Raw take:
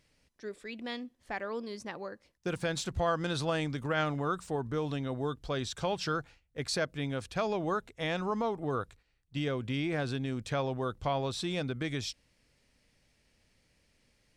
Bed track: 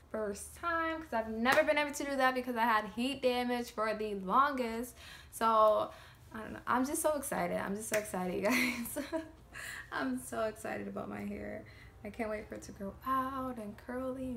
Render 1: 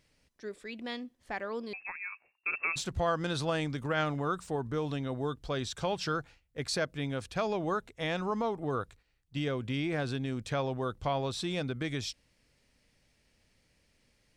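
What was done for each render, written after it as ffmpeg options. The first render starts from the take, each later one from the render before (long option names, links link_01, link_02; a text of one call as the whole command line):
ffmpeg -i in.wav -filter_complex "[0:a]asettb=1/sr,asplit=3[link_01][link_02][link_03];[link_01]atrim=end=1.734[link_04];[link_02]atrim=start=1.73:end=2.76,asetpts=PTS-STARTPTS,afade=type=in:duration=0.004:curve=qsin,afade=type=out:start_time=1.026:duration=0.004:curve=qsin,lowpass=frequency=2400:width_type=q:width=0.5098,lowpass=frequency=2400:width_type=q:width=0.6013,lowpass=frequency=2400:width_type=q:width=0.9,lowpass=frequency=2400:width_type=q:width=2.563,afreqshift=-2800[link_05];[link_03]atrim=start=2.756[link_06];[link_04][link_05]acrossfade=duration=0.004:curve1=hsin:curve2=qsin[link_07];[link_07][link_06]acrossfade=duration=0.004:curve1=qsin:curve2=hsin" out.wav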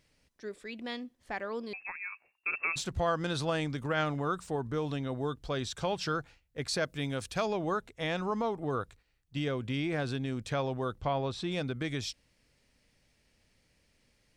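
ffmpeg -i in.wav -filter_complex "[0:a]asettb=1/sr,asplit=3[link_01][link_02][link_03];[link_01]atrim=end=6.834[link_04];[link_02]atrim=start=6.83:end=7.46,asetpts=PTS-STARTPTS,afade=type=in:duration=0.004:curve=qsin,afade=type=out:start_time=0.626:duration=0.004:curve=qsin,highshelf=frequency=4600:gain=8.5[link_05];[link_03]atrim=start=7.456[link_06];[link_04][link_05]acrossfade=duration=0.004:curve1=hsin:curve2=qsin[link_07];[link_07][link_06]acrossfade=duration=0.004:curve1=qsin:curve2=hsin,asettb=1/sr,asplit=3[link_08][link_09][link_10];[link_08]atrim=end=11.014[link_11];[link_09]atrim=start=11.01:end=11.52,asetpts=PTS-STARTPTS,afade=type=in:duration=0.004:curve=qsin,afade=type=out:start_time=0.506:duration=0.004:curve=qsin,aemphasis=mode=reproduction:type=50fm[link_12];[link_10]atrim=start=11.516[link_13];[link_11][link_12]acrossfade=duration=0.004:curve1=hsin:curve2=qsin[link_14];[link_14][link_13]acrossfade=duration=0.004:curve1=qsin:curve2=hsin" out.wav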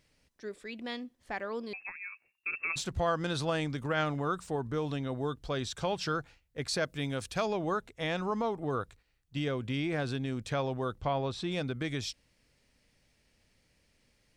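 ffmpeg -i in.wav -filter_complex "[0:a]asettb=1/sr,asplit=3[link_01][link_02][link_03];[link_01]atrim=end=1.894[link_04];[link_02]atrim=start=1.89:end=2.7,asetpts=PTS-STARTPTS,afade=type=in:duration=0.004:curve=qsin,afade=type=out:start_time=0.806:duration=0.004:curve=qsin,equalizer=frequency=780:width=0.81:gain=-11[link_05];[link_03]atrim=start=2.696[link_06];[link_04][link_05]acrossfade=duration=0.004:curve1=hsin:curve2=qsin[link_07];[link_07][link_06]acrossfade=duration=0.004:curve1=qsin:curve2=hsin" out.wav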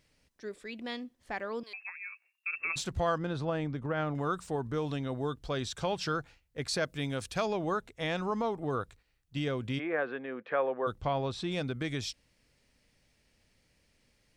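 ffmpeg -i in.wav -filter_complex "[0:a]asettb=1/sr,asplit=3[link_01][link_02][link_03];[link_01]atrim=end=1.634[link_04];[link_02]atrim=start=1.63:end=2.55,asetpts=PTS-STARTPTS,afade=type=in:duration=0.004:curve=qsin,afade=type=out:start_time=0.916:duration=0.004:curve=qsin,highpass=970[link_05];[link_03]atrim=start=2.546[link_06];[link_04][link_05]acrossfade=duration=0.004:curve1=hsin:curve2=qsin[link_07];[link_07][link_06]acrossfade=duration=0.004:curve1=qsin:curve2=hsin,asettb=1/sr,asplit=3[link_08][link_09][link_10];[link_08]atrim=end=3.184[link_11];[link_09]atrim=start=3.18:end=4.15,asetpts=PTS-STARTPTS,afade=type=in:duration=0.004:curve=qsin,afade=type=out:start_time=0.966:duration=0.004:curve=qsin,lowpass=frequency=1100:poles=1[link_12];[link_10]atrim=start=4.146[link_13];[link_11][link_12]acrossfade=duration=0.004:curve1=hsin:curve2=qsin[link_14];[link_14][link_13]acrossfade=duration=0.004:curve1=qsin:curve2=hsin,asplit=3[link_15][link_16][link_17];[link_15]afade=type=out:start_time=9.78:duration=0.02[link_18];[link_16]highpass=frequency=250:width=0.5412,highpass=frequency=250:width=1.3066,equalizer=frequency=280:width_type=q:width=4:gain=-6,equalizer=frequency=510:width_type=q:width=4:gain=7,equalizer=frequency=1200:width_type=q:width=4:gain=5,equalizer=frequency=1700:width_type=q:width=4:gain=6,lowpass=frequency=2400:width=0.5412,lowpass=frequency=2400:width=1.3066,afade=type=in:start_time=9.78:duration=0.02,afade=type=out:start_time=10.86:duration=0.02[link_19];[link_17]afade=type=in:start_time=10.86:duration=0.02[link_20];[link_18][link_19][link_20]amix=inputs=3:normalize=0" out.wav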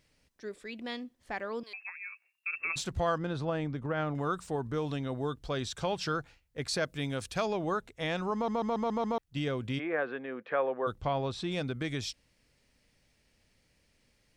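ffmpeg -i in.wav -filter_complex "[0:a]asplit=7[link_01][link_02][link_03][link_04][link_05][link_06][link_07];[link_01]atrim=end=8.482[link_08];[link_02]atrim=start=8.338:end=8.482[link_09];[link_03]atrim=start=8.338:end=8.482[link_10];[link_04]atrim=start=8.338:end=8.482[link_11];[link_05]atrim=start=8.338:end=8.482[link_12];[link_06]atrim=start=8.338:end=8.482[link_13];[link_07]atrim=start=9.178[link_14];[link_08][link_09]acrossfade=duration=0.004:curve1=hsin:curve2=hsin[link_15];[link_15][link_10]acrossfade=duration=0.004:curve1=hsin:curve2=hsin[link_16];[link_16][link_11]acrossfade=duration=0.004:curve1=hsin:curve2=hsin[link_17];[link_17][link_12]acrossfade=duration=0.004:curve1=hsin:curve2=hsin[link_18];[link_18][link_13]acrossfade=duration=0.004:curve1=hsin:curve2=hsin[link_19];[link_19][link_14]acrossfade=duration=0.004:curve1=hsin:curve2=hsin" out.wav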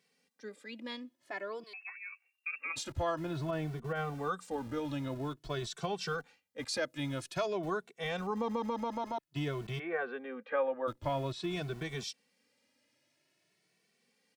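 ffmpeg -i in.wav -filter_complex "[0:a]acrossover=split=160[link_01][link_02];[link_01]aeval=exprs='val(0)*gte(abs(val(0)),0.0075)':channel_layout=same[link_03];[link_03][link_02]amix=inputs=2:normalize=0,asplit=2[link_04][link_05];[link_05]adelay=2.2,afreqshift=0.5[link_06];[link_04][link_06]amix=inputs=2:normalize=1" out.wav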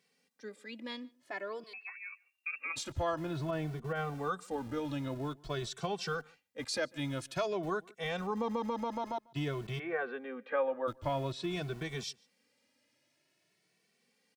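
ffmpeg -i in.wav -filter_complex "[0:a]asplit=2[link_01][link_02];[link_02]adelay=145.8,volume=-26dB,highshelf=frequency=4000:gain=-3.28[link_03];[link_01][link_03]amix=inputs=2:normalize=0" out.wav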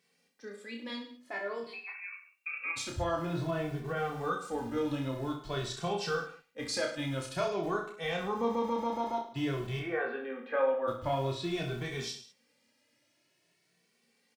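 ffmpeg -i in.wav -filter_complex "[0:a]asplit=2[link_01][link_02];[link_02]adelay=17,volume=-11dB[link_03];[link_01][link_03]amix=inputs=2:normalize=0,aecho=1:1:30|64.5|104.2|149.8|202.3:0.631|0.398|0.251|0.158|0.1" out.wav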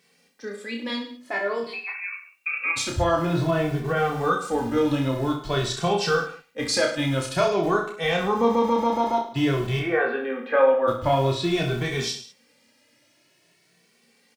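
ffmpeg -i in.wav -af "volume=10.5dB" out.wav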